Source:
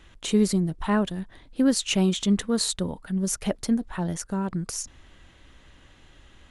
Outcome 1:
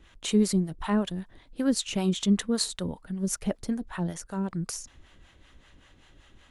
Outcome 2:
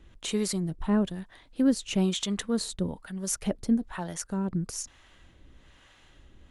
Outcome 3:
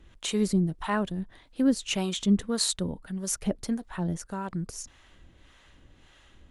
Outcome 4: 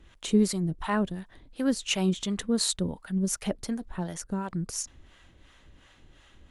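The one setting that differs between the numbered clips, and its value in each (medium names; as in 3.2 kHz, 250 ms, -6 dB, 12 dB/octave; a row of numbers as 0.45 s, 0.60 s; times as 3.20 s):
harmonic tremolo, rate: 5.2 Hz, 1.1 Hz, 1.7 Hz, 2.8 Hz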